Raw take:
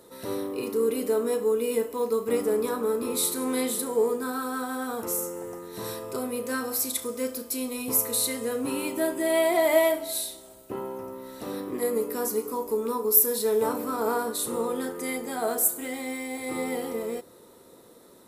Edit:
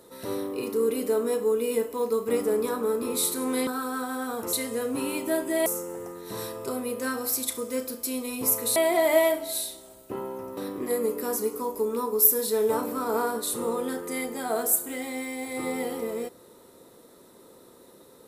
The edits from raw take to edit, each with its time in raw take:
3.67–4.27 cut
8.23–9.36 move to 5.13
11.17–11.49 cut

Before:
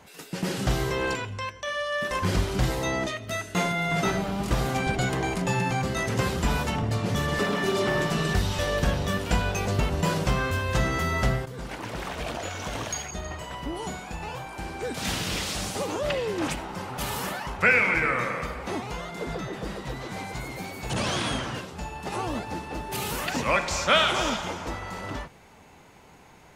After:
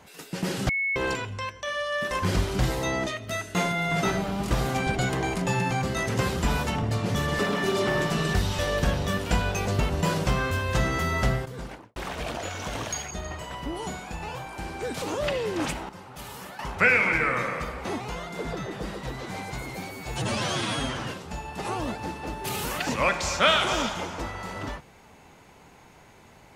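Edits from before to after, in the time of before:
0.69–0.96 bleep 2200 Hz -23.5 dBFS
11.58–11.96 studio fade out
15.02–15.84 cut
16.71–17.41 gain -9.5 dB
20.73–21.42 stretch 1.5×

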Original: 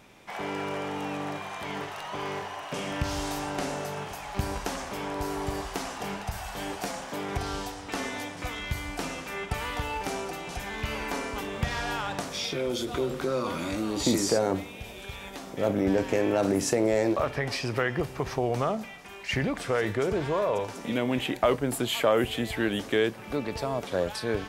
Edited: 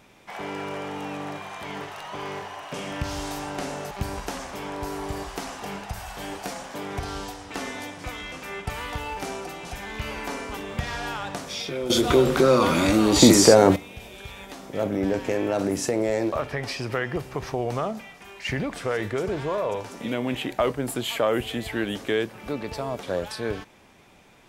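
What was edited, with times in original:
3.91–4.29 cut
8.7–9.16 cut
12.74–14.6 gain +11 dB

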